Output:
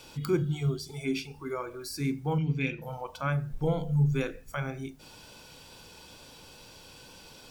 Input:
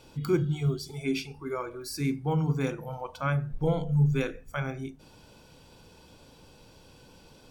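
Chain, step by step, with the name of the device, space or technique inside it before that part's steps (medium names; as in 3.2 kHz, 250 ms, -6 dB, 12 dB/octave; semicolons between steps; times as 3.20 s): noise-reduction cassette on a plain deck (tape noise reduction on one side only encoder only; wow and flutter 14 cents; white noise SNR 39 dB); 2.38–2.82 s: FFT filter 270 Hz 0 dB, 1.2 kHz -17 dB, 2.4 kHz +12 dB, 7.6 kHz -14 dB; trim -1.5 dB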